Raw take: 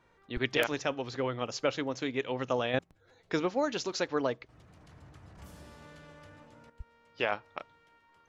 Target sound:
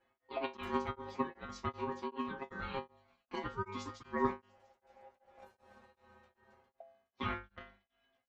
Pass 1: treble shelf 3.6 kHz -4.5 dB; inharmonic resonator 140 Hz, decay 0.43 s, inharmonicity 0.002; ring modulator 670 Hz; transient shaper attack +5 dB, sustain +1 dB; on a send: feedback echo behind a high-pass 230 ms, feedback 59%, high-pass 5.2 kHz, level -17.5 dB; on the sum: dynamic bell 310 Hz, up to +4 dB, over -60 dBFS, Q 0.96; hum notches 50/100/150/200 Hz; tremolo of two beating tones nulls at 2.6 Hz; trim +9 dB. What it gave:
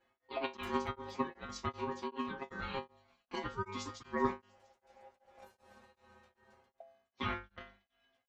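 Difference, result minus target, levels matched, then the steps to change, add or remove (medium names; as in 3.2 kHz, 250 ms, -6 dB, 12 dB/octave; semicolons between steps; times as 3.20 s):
8 kHz band +5.5 dB
change: treble shelf 3.6 kHz -13 dB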